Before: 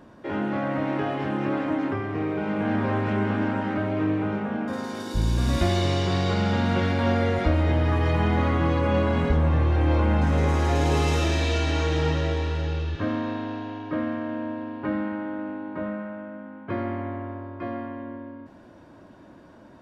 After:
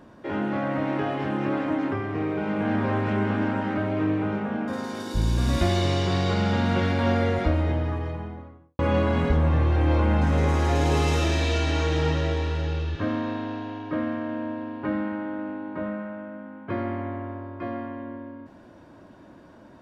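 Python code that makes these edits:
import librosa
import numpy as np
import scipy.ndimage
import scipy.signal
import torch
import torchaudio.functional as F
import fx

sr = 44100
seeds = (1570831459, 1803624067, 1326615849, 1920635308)

y = fx.studio_fade_out(x, sr, start_s=7.15, length_s=1.64)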